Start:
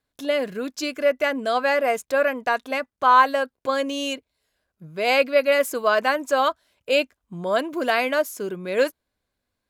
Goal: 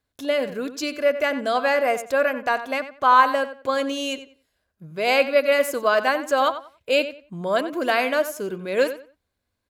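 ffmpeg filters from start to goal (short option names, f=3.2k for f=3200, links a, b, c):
-filter_complex "[0:a]equalizer=f=78:t=o:w=0.74:g=6.5,asplit=2[a][b];[b]adelay=91,lowpass=f=3.9k:p=1,volume=-12dB,asplit=2[c][d];[d]adelay=91,lowpass=f=3.9k:p=1,volume=0.24,asplit=2[e][f];[f]adelay=91,lowpass=f=3.9k:p=1,volume=0.24[g];[c][e][g]amix=inputs=3:normalize=0[h];[a][h]amix=inputs=2:normalize=0"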